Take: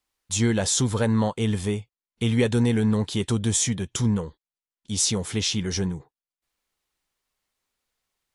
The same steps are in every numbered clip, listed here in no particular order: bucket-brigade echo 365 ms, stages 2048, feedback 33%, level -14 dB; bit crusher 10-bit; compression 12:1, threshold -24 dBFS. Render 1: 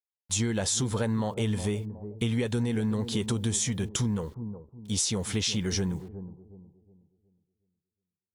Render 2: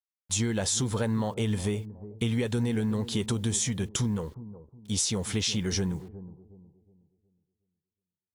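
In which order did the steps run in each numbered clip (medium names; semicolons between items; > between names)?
bit crusher > bucket-brigade echo > compression; compression > bit crusher > bucket-brigade echo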